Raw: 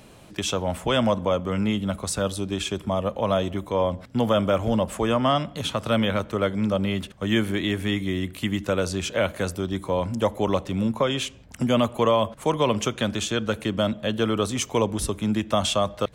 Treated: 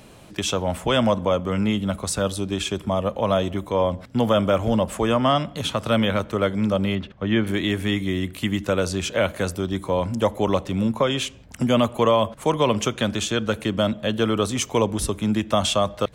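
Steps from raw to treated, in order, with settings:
0:06.95–0:07.47: high-frequency loss of the air 220 metres
level +2 dB

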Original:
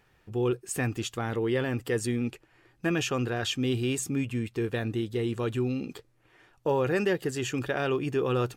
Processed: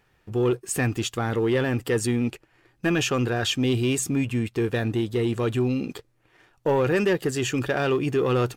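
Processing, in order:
leveller curve on the samples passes 1
level +2 dB

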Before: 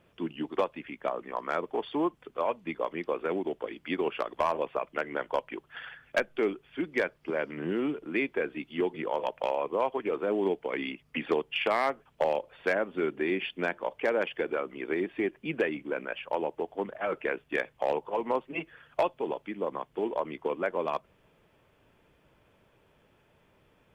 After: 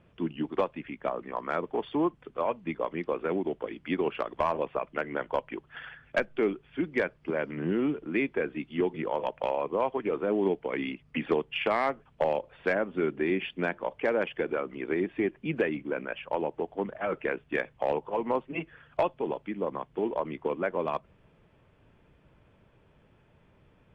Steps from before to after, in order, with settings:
bass and treble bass +7 dB, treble −8 dB
AAC 96 kbit/s 22,050 Hz

